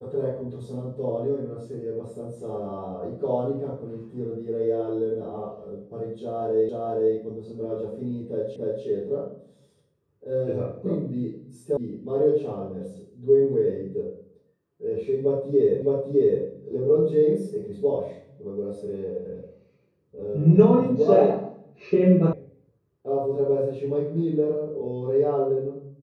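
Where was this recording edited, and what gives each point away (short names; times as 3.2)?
6.69 repeat of the last 0.47 s
8.56 repeat of the last 0.29 s
11.77 sound cut off
15.82 repeat of the last 0.61 s
22.33 sound cut off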